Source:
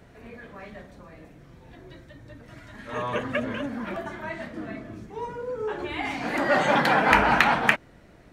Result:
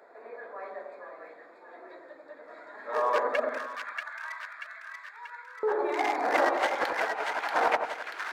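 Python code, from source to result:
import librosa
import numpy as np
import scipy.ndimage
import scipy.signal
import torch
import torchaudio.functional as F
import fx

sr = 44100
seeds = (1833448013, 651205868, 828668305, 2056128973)

y = fx.wiener(x, sr, points=15)
y = fx.highpass(y, sr, hz=fx.steps((0.0, 470.0), (3.49, 1400.0), (5.63, 410.0)), slope=24)
y = fx.over_compress(y, sr, threshold_db=-28.0, ratio=-0.5)
y = fx.echo_split(y, sr, split_hz=1300.0, low_ms=87, high_ms=635, feedback_pct=52, wet_db=-3.5)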